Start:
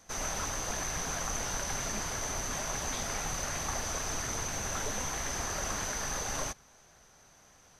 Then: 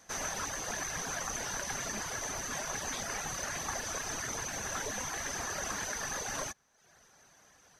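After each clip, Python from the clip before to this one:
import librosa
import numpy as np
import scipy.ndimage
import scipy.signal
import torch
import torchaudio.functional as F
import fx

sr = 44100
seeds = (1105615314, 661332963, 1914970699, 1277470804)

y = fx.peak_eq(x, sr, hz=1700.0, db=5.0, octaves=0.26)
y = fx.dereverb_blind(y, sr, rt60_s=0.73)
y = fx.low_shelf(y, sr, hz=75.0, db=-11.5)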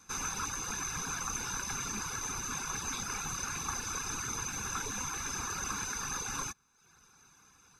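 y = x + 0.95 * np.pad(x, (int(0.8 * sr / 1000.0), 0))[:len(x)]
y = y * librosa.db_to_amplitude(-3.0)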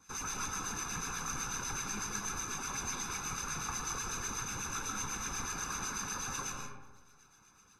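y = fx.harmonic_tremolo(x, sr, hz=8.1, depth_pct=70, crossover_hz=1300.0)
y = fx.rev_freeverb(y, sr, rt60_s=1.2, hf_ratio=0.4, predelay_ms=90, drr_db=1.0)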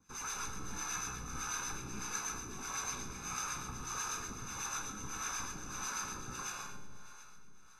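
y = fx.comb_fb(x, sr, f0_hz=62.0, decay_s=1.8, harmonics='all', damping=0.0, mix_pct=80)
y = fx.echo_feedback(y, sr, ms=363, feedback_pct=59, wet_db=-14.5)
y = fx.harmonic_tremolo(y, sr, hz=1.6, depth_pct=70, crossover_hz=480.0)
y = y * librosa.db_to_amplitude(11.0)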